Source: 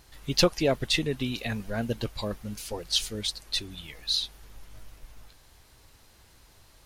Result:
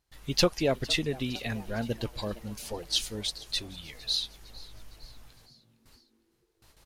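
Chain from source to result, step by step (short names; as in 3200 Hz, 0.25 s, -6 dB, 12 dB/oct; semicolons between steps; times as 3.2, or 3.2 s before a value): gate with hold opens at -44 dBFS; on a send: frequency-shifting echo 0.459 s, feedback 56%, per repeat +110 Hz, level -20 dB; on the sum: gain -2 dB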